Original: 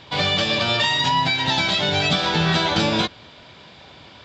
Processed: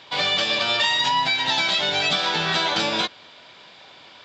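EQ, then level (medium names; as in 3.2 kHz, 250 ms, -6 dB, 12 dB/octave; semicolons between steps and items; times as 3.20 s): high-pass 610 Hz 6 dB/octave; 0.0 dB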